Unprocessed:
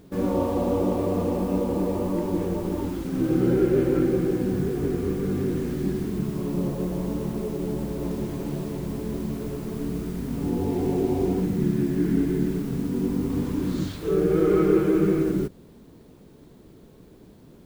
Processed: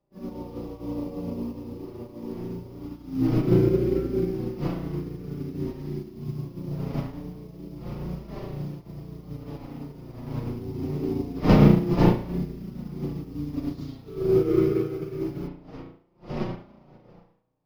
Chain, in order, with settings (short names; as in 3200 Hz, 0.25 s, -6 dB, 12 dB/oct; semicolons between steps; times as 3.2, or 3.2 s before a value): wind noise 600 Hz -30 dBFS; thirty-one-band EQ 125 Hz +7 dB, 250 Hz +5 dB, 1600 Hz -8 dB, 5000 Hz +11 dB, 8000 Hz -12 dB, 12500 Hz +4 dB; spring tank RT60 1 s, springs 34 ms, chirp 40 ms, DRR -2 dB; flange 0.24 Hz, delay 5 ms, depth 3.4 ms, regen -14%; dynamic EQ 730 Hz, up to -6 dB, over -32 dBFS, Q 0.77; upward expander 2.5:1, over -40 dBFS; gain +3.5 dB